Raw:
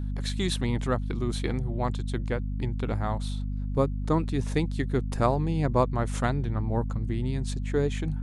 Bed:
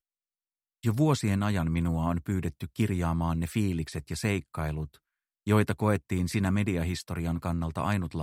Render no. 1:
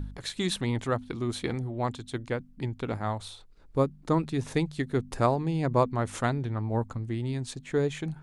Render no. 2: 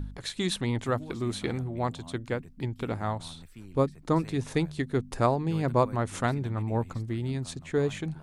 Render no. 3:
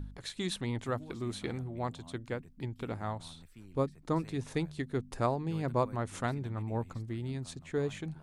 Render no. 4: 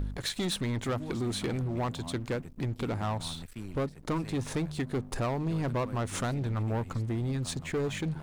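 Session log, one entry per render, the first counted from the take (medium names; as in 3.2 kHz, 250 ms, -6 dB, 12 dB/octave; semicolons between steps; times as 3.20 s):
de-hum 50 Hz, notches 5
add bed -19.5 dB
trim -6 dB
compression 2:1, threshold -38 dBFS, peak gain reduction 8 dB; waveshaping leveller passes 3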